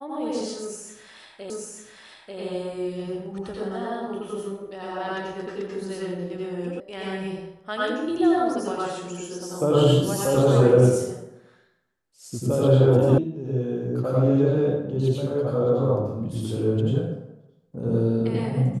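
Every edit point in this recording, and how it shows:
0:01.50: the same again, the last 0.89 s
0:06.80: cut off before it has died away
0:13.18: cut off before it has died away

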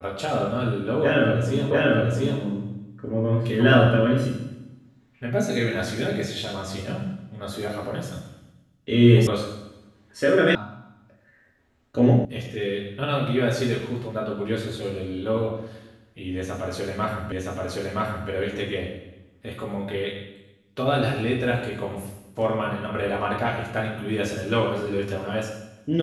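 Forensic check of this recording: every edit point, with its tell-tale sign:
0:01.71: the same again, the last 0.69 s
0:09.27: cut off before it has died away
0:10.55: cut off before it has died away
0:12.25: cut off before it has died away
0:17.32: the same again, the last 0.97 s

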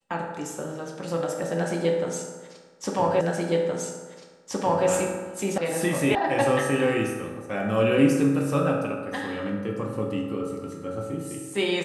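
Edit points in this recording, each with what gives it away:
0:03.21: the same again, the last 1.67 s
0:05.58: cut off before it has died away
0:06.15: cut off before it has died away

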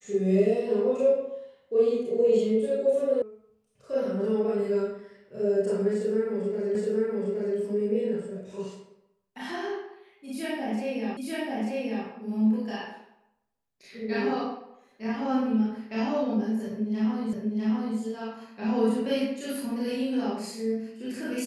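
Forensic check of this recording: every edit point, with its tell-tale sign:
0:03.22: cut off before it has died away
0:06.75: the same again, the last 0.82 s
0:11.17: the same again, the last 0.89 s
0:17.33: the same again, the last 0.65 s

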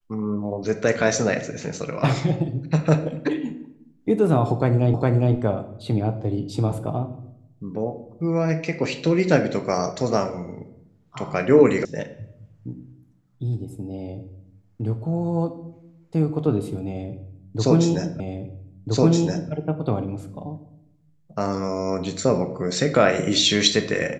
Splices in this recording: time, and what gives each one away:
0:04.94: the same again, the last 0.41 s
0:11.85: cut off before it has died away
0:18.20: the same again, the last 1.32 s

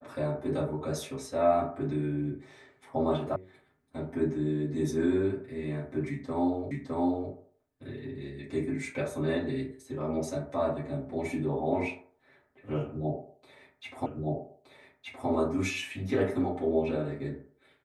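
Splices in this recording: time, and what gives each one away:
0:03.36: cut off before it has died away
0:06.71: the same again, the last 0.61 s
0:14.06: the same again, the last 1.22 s

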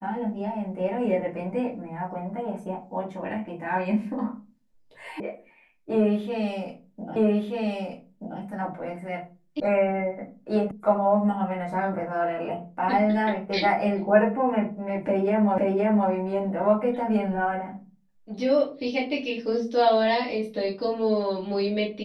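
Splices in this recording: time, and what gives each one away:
0:05.20: cut off before it has died away
0:07.16: the same again, the last 1.23 s
0:09.60: cut off before it has died away
0:10.71: cut off before it has died away
0:15.58: the same again, the last 0.52 s

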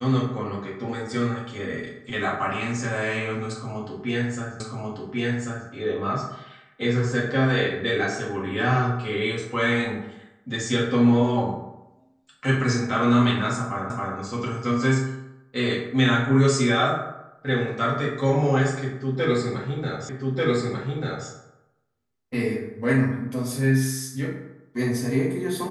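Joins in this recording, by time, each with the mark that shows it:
0:04.60: the same again, the last 1.09 s
0:13.90: the same again, the last 0.27 s
0:20.09: the same again, the last 1.19 s

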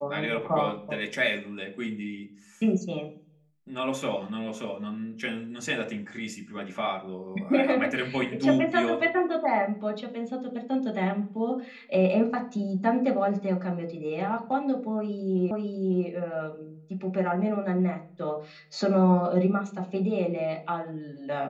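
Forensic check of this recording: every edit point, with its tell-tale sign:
0:15.51: the same again, the last 0.55 s

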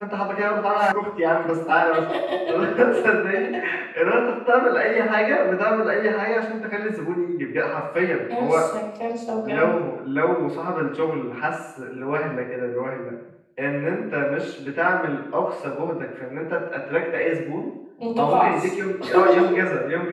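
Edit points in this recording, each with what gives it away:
0:00.92: cut off before it has died away

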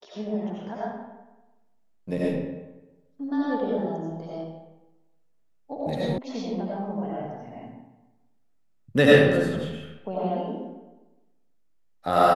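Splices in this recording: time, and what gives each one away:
0:06.18: cut off before it has died away

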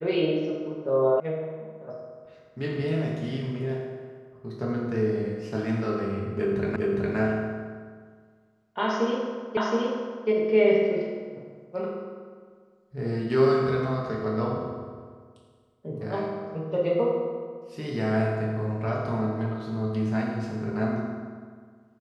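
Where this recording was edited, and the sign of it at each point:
0:01.20: cut off before it has died away
0:06.76: the same again, the last 0.41 s
0:09.57: the same again, the last 0.72 s

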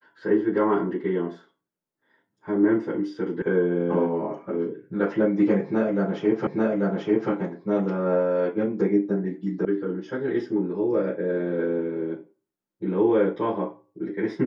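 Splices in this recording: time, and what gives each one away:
0:03.42: cut off before it has died away
0:06.47: the same again, the last 0.84 s
0:09.65: cut off before it has died away

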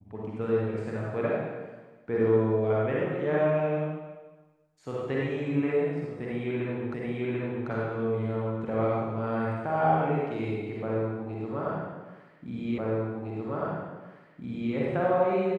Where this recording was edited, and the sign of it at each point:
0:06.94: the same again, the last 0.74 s
0:12.78: the same again, the last 1.96 s

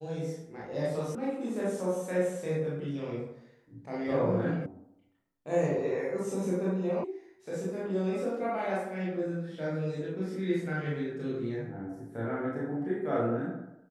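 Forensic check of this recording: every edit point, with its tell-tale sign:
0:01.15: cut off before it has died away
0:04.66: cut off before it has died away
0:07.04: cut off before it has died away

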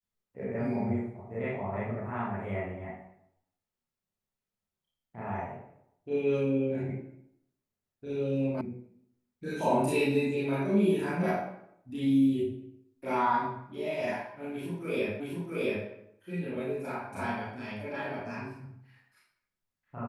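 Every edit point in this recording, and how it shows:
0:08.61: cut off before it has died away
0:15.20: the same again, the last 0.67 s

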